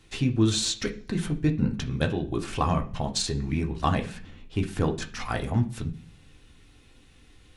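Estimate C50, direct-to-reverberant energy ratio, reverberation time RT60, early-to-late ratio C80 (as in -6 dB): 14.0 dB, 3.0 dB, 0.50 s, 19.0 dB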